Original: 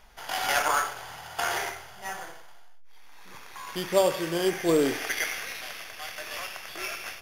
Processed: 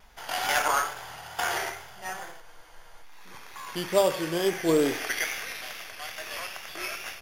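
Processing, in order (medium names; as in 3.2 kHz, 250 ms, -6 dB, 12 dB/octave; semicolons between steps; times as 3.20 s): vibrato 2.3 Hz 51 cents; spectral freeze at 2.44 s, 0.59 s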